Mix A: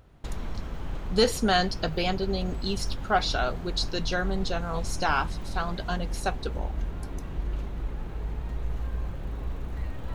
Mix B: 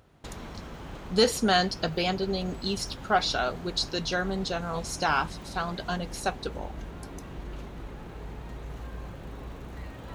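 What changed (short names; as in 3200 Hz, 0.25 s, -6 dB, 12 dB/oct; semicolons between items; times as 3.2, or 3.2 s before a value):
background: add HPF 140 Hz 6 dB/oct; master: add bell 6700 Hz +2 dB 1.6 oct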